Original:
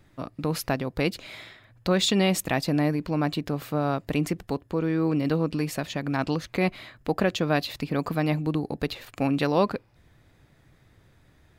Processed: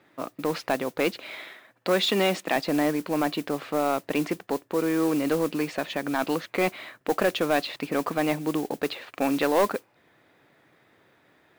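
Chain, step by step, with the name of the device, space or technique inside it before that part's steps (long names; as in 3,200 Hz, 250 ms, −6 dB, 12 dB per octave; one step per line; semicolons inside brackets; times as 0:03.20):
carbon microphone (band-pass filter 320–3,300 Hz; soft clipping −17.5 dBFS, distortion −15 dB; noise that follows the level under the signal 18 dB)
0:01.35–0:02.56: high-pass filter 140 Hz 24 dB per octave
level +4.5 dB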